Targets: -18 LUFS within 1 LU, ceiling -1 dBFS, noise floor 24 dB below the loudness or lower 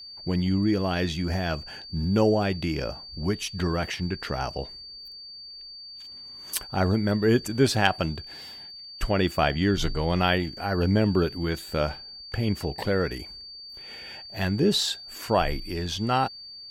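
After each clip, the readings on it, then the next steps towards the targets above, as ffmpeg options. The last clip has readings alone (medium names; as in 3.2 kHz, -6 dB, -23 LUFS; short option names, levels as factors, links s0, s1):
steady tone 4.6 kHz; tone level -40 dBFS; loudness -26.0 LUFS; peak level -7.0 dBFS; loudness target -18.0 LUFS
-> -af "bandreject=f=4600:w=30"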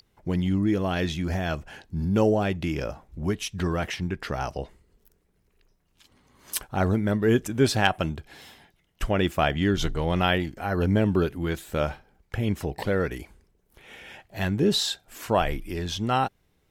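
steady tone not found; loudness -26.5 LUFS; peak level -7.0 dBFS; loudness target -18.0 LUFS
-> -af "volume=2.66,alimiter=limit=0.891:level=0:latency=1"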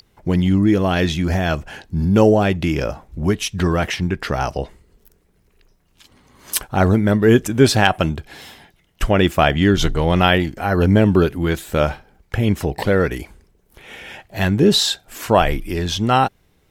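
loudness -18.0 LUFS; peak level -1.0 dBFS; noise floor -60 dBFS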